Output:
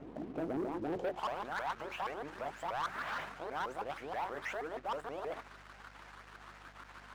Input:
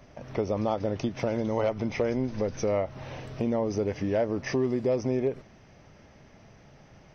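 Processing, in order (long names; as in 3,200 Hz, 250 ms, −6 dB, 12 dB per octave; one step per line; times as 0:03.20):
pitch shifter swept by a sawtooth +11.5 semitones, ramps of 159 ms
mains-hum notches 60/120/180/240/300/360 Hz
reversed playback
downward compressor 6 to 1, threshold −36 dBFS, peak gain reduction 13 dB
reversed playback
band-pass filter sweep 320 Hz → 1,500 Hz, 0:00.84–0:01.39
leveller curve on the samples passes 3
mains hum 50 Hz, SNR 21 dB
level +2.5 dB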